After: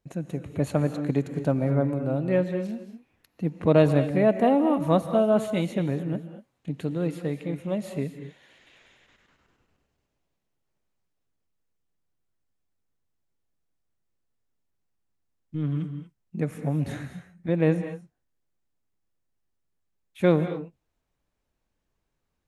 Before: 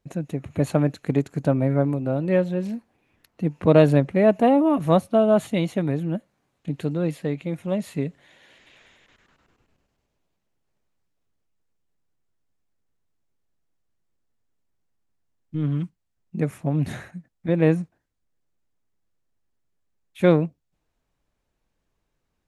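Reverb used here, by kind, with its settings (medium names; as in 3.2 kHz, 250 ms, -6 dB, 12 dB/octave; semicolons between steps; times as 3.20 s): gated-style reverb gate 260 ms rising, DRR 9 dB; trim -3.5 dB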